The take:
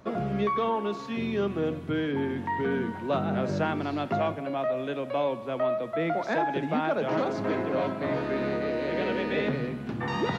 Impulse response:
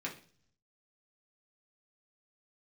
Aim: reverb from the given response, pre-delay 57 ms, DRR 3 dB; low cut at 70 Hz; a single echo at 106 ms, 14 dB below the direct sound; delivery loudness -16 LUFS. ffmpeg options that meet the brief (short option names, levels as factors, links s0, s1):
-filter_complex "[0:a]highpass=70,aecho=1:1:106:0.2,asplit=2[s0][s1];[1:a]atrim=start_sample=2205,adelay=57[s2];[s1][s2]afir=irnorm=-1:irlink=0,volume=0.562[s3];[s0][s3]amix=inputs=2:normalize=0,volume=3.55"